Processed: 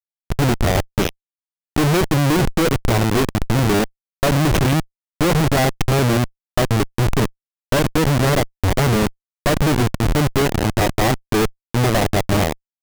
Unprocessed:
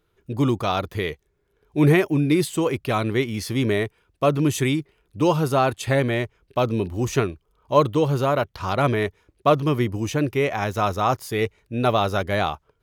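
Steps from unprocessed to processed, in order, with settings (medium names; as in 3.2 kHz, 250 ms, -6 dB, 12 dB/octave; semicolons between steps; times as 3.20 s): comb filter that takes the minimum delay 0.33 ms; Schmitt trigger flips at -23.5 dBFS; trim +8.5 dB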